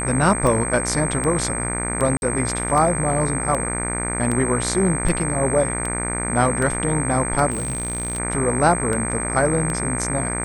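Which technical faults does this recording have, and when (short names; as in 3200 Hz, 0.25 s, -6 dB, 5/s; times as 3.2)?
buzz 60 Hz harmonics 40 -27 dBFS
tick 78 rpm -12 dBFS
tone 8300 Hz -26 dBFS
2.17–2.22 gap 51 ms
7.5–8.2 clipped -21 dBFS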